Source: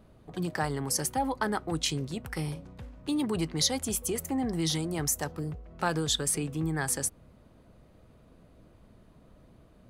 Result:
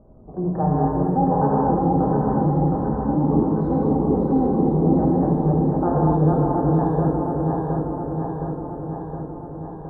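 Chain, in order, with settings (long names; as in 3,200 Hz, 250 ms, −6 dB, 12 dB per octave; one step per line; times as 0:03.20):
feedback delay that plays each chunk backwards 358 ms, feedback 80%, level −2 dB
inverse Chebyshev low-pass filter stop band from 2,400 Hz, stop band 50 dB
reverb whose tail is shaped and stops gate 300 ms flat, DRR −4 dB
level +5 dB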